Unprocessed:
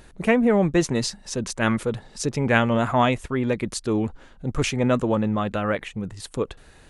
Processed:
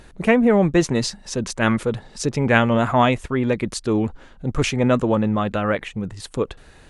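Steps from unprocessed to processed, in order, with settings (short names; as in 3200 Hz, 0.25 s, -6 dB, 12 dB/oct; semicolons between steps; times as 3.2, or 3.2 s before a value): high shelf 10000 Hz -7 dB; gain +3 dB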